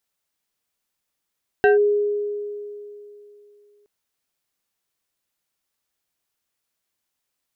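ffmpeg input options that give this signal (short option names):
-f lavfi -i "aevalsrc='0.299*pow(10,-3*t/2.93)*sin(2*PI*413*t+1*clip(1-t/0.14,0,1)*sin(2*PI*2.79*413*t))':d=2.22:s=44100"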